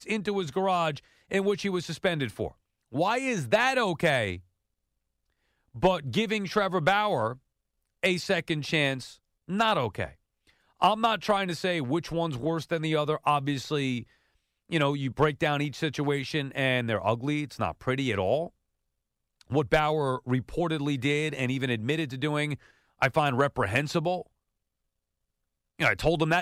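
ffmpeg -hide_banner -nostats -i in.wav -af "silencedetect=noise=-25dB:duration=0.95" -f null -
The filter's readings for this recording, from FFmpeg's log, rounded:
silence_start: 4.33
silence_end: 5.83 | silence_duration: 1.50
silence_start: 18.43
silence_end: 19.53 | silence_duration: 1.10
silence_start: 24.16
silence_end: 25.81 | silence_duration: 1.65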